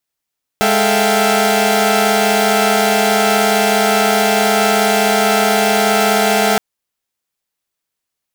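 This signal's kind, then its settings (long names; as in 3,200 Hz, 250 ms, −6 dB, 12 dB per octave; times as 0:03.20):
held notes G#3/A4/E5/F5/G5 saw, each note −15.5 dBFS 5.97 s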